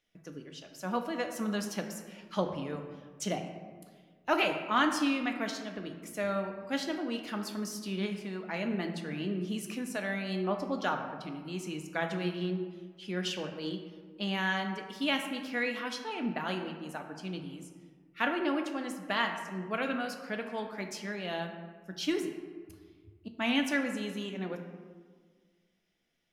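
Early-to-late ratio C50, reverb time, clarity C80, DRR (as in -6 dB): 6.5 dB, 1.7 s, 8.5 dB, 4.0 dB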